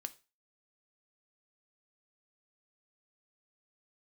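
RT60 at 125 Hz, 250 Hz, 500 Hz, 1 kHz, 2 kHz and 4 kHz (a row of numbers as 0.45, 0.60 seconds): 0.40, 0.30, 0.30, 0.30, 0.30, 0.30 seconds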